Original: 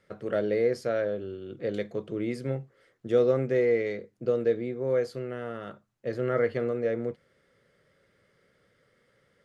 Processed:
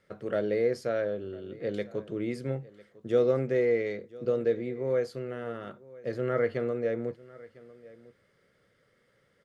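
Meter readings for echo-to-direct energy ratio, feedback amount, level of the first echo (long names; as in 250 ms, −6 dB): −21.0 dB, repeats not evenly spaced, −21.0 dB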